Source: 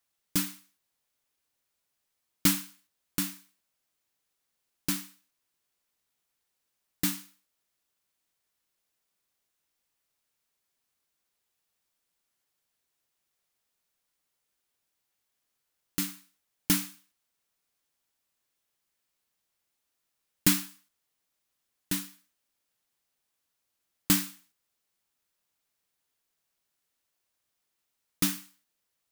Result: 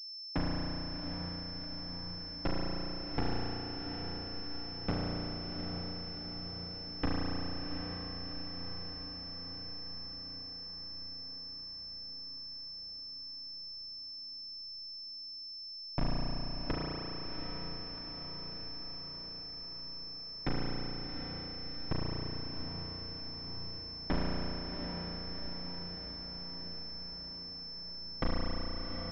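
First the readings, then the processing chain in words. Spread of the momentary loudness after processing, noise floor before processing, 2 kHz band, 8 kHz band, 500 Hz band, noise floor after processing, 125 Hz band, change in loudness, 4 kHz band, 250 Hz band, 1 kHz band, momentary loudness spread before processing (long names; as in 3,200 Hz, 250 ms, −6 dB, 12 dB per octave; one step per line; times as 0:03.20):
6 LU, −81 dBFS, −4.0 dB, below −35 dB, +10.5 dB, −45 dBFS, +3.5 dB, −10.0 dB, +3.0 dB, −2.5 dB, +5.5 dB, 15 LU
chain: lower of the sound and its delayed copy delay 0.57 ms
high-pass filter 190 Hz 12 dB per octave
mains-hum notches 50/100/150/200/250/300/350/400/450 Hz
downward compressor 12 to 1, threshold −28 dBFS, peak gain reduction 10 dB
comparator with hysteresis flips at −23 dBFS
feedback delay with all-pass diffusion 735 ms, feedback 67%, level −6.5 dB
spring reverb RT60 3.4 s, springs 34 ms, chirp 25 ms, DRR −5 dB
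switching amplifier with a slow clock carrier 5,300 Hz
level +17 dB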